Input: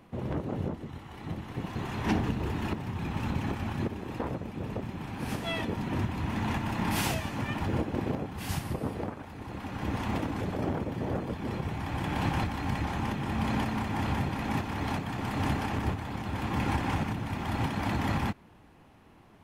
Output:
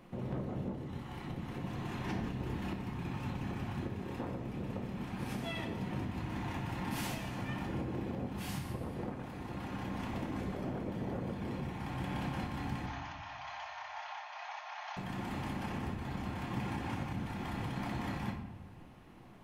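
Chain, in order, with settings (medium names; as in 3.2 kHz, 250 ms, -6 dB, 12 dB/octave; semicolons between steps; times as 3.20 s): compression 2.5:1, threshold -39 dBFS, peak gain reduction 11 dB; 12.86–14.97 s: brick-wall FIR band-pass 590–6800 Hz; simulated room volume 350 m³, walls mixed, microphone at 0.92 m; trim -2 dB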